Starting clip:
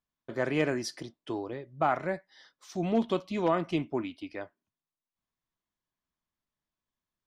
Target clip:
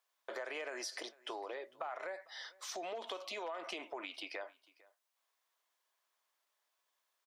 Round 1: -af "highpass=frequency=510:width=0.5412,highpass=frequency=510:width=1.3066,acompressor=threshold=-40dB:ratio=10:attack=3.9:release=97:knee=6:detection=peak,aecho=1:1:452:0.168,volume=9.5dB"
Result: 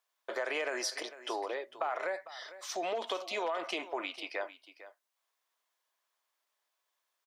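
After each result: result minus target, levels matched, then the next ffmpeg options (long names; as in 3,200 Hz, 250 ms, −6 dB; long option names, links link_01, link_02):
downward compressor: peak gain reduction −8 dB; echo-to-direct +8 dB
-af "highpass=frequency=510:width=0.5412,highpass=frequency=510:width=1.3066,acompressor=threshold=-49dB:ratio=10:attack=3.9:release=97:knee=6:detection=peak,aecho=1:1:452:0.168,volume=9.5dB"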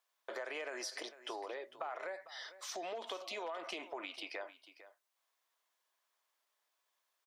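echo-to-direct +8 dB
-af "highpass=frequency=510:width=0.5412,highpass=frequency=510:width=1.3066,acompressor=threshold=-49dB:ratio=10:attack=3.9:release=97:knee=6:detection=peak,aecho=1:1:452:0.0668,volume=9.5dB"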